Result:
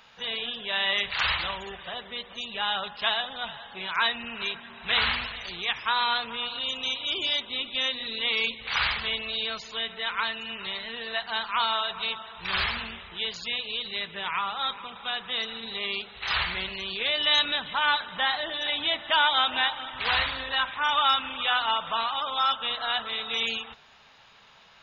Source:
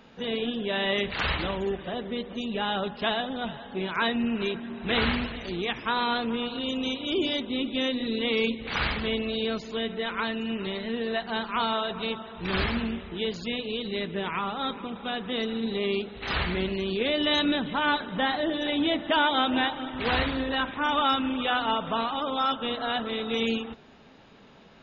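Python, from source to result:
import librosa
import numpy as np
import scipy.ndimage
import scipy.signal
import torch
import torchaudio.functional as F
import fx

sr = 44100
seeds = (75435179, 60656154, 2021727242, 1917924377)

y = fx.curve_eq(x, sr, hz=(120.0, 280.0, 1000.0, 1600.0, 3500.0), db=(0, -11, 10, 10, 13))
y = F.gain(torch.from_numpy(y), -8.0).numpy()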